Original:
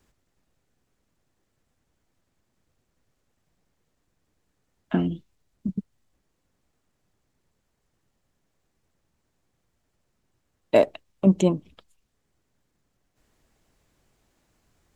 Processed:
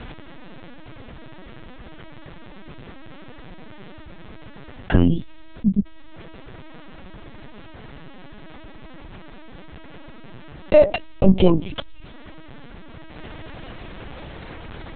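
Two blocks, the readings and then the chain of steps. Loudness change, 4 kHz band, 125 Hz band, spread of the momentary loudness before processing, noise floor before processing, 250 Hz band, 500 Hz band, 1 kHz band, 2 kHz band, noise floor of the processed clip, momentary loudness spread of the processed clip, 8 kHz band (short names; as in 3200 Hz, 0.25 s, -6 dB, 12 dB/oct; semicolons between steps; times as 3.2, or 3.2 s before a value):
+5.0 dB, +9.0 dB, +6.5 dB, 14 LU, -75 dBFS, +5.0 dB, +5.5 dB, +5.0 dB, +7.5 dB, -41 dBFS, 23 LU, under -25 dB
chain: LPC vocoder at 8 kHz pitch kept; fast leveller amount 50%; gain +4 dB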